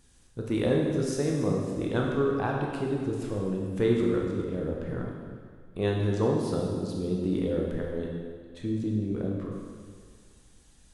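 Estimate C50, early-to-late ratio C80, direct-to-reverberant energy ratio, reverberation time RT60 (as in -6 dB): 1.0 dB, 2.5 dB, -1.5 dB, 1.9 s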